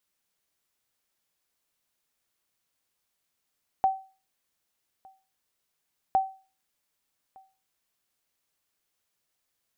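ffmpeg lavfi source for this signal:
-f lavfi -i "aevalsrc='0.168*(sin(2*PI*768*mod(t,2.31))*exp(-6.91*mod(t,2.31)/0.35)+0.0376*sin(2*PI*768*max(mod(t,2.31)-1.21,0))*exp(-6.91*max(mod(t,2.31)-1.21,0)/0.35))':d=4.62:s=44100"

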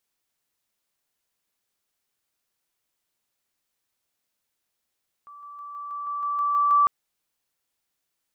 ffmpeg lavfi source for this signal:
-f lavfi -i "aevalsrc='pow(10,(-42+3*floor(t/0.16))/20)*sin(2*PI*1160*t)':d=1.6:s=44100"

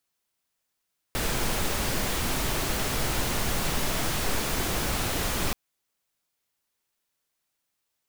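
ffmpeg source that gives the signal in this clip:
-f lavfi -i "anoisesrc=c=pink:a=0.229:d=4.38:r=44100:seed=1"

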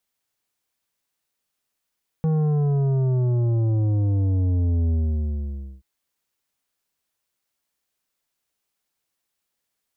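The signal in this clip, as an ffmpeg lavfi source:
-f lavfi -i "aevalsrc='0.112*clip((3.58-t)/0.91,0,1)*tanh(2.99*sin(2*PI*160*3.58/log(65/160)*(exp(log(65/160)*t/3.58)-1)))/tanh(2.99)':d=3.58:s=44100"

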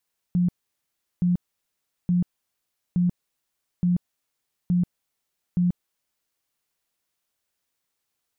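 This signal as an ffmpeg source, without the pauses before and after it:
-f lavfi -i "aevalsrc='0.133*sin(2*PI*177*mod(t,0.87))*lt(mod(t,0.87),24/177)':d=6.09:s=44100"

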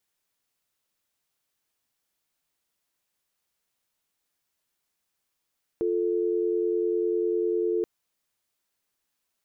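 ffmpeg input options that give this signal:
-f lavfi -i "aevalsrc='0.0531*(sin(2*PI*350*t)+sin(2*PI*440*t))':d=2.03:s=44100"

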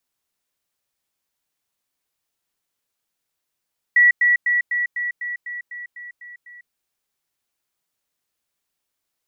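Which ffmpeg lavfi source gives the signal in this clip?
-f lavfi -i "aevalsrc='pow(10,(-9.5-3*floor(t/0.25))/20)*sin(2*PI*1940*t)*clip(min(mod(t,0.25),0.15-mod(t,0.25))/0.005,0,1)':d=2.75:s=44100"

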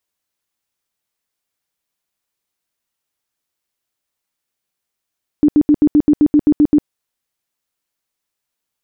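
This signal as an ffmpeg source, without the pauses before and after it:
-f lavfi -i "aevalsrc='0.473*sin(2*PI*297*mod(t,0.13))*lt(mod(t,0.13),16/297)':d=1.43:s=44100"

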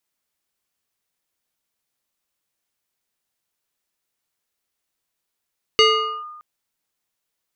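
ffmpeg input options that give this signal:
-f lavfi -i "aevalsrc='0.376*pow(10,-3*t/1.18)*sin(2*PI*1220*t+1.8*clip(1-t/0.45,0,1)*sin(2*PI*1.36*1220*t))':d=0.62:s=44100"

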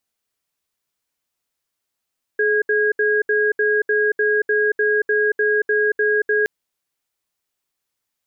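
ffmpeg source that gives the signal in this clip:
-f lavfi -i "aevalsrc='0.133*(sin(2*PI*424*t)+sin(2*PI*1640*t))*clip(min(mod(t,0.3),0.23-mod(t,0.3))/0.005,0,1)':d=4.07:s=44100"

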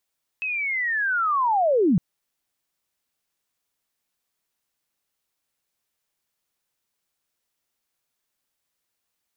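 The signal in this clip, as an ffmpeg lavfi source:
-f lavfi -i "aevalsrc='pow(10,(-24.5+9.5*t/1.56)/20)*sin(2*PI*(2600*t-2450*t*t/(2*1.56)))':d=1.56:s=44100"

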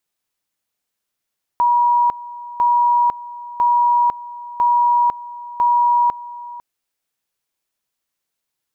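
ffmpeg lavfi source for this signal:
-f lavfi -i "aevalsrc='pow(10,(-11.5-18*gte(mod(t,1),0.5))/20)*sin(2*PI*961*t)':d=5:s=44100"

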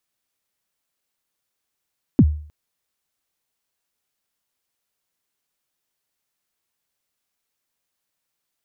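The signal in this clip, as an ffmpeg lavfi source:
-f lavfi -i "aevalsrc='0.531*pow(10,-3*t/0.48)*sin(2*PI*(320*0.053/log(75/320)*(exp(log(75/320)*min(t,0.053)/0.053)-1)+75*max(t-0.053,0)))':d=0.31:s=44100"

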